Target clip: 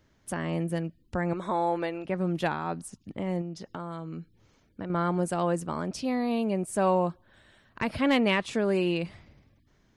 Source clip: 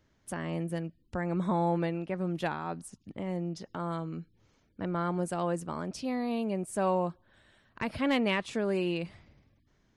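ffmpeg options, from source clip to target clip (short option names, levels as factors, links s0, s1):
-filter_complex "[0:a]asettb=1/sr,asplit=3[s0][s1][s2];[s0]atrim=end=1.334[s3];[s1]atrim=start=1.33:end=2.05,asetpts=PTS-STARTPTS,afade=t=in:d=0.004:c=qsin,afade=t=out:st=0.716:d=0.004:c=qsin,equalizer=f=160:w=1.1:g=-14.5[s4];[s2]atrim=start=2.046[s5];[s3][s4]acrossfade=d=0.004:c1=hsin:c2=qsin[s6];[s6][s5]acrossfade=d=0.004:c1=qsin:c2=hsin,asettb=1/sr,asplit=3[s7][s8][s9];[s7]atrim=end=3.414[s10];[s8]atrim=start=3.41:end=4.9,asetpts=PTS-STARTPTS,afade=t=in:d=0.004:c=qsin,afade=t=out:st=1.486:d=0.004:c=qsin,acompressor=threshold=0.0112:ratio=3[s11];[s9]atrim=start=4.896[s12];[s10][s11]acrossfade=d=0.004:c1=hsin:c2=qsin[s13];[s13][s12]acrossfade=d=0.004:c1=qsin:c2=hsin,volume=1.58"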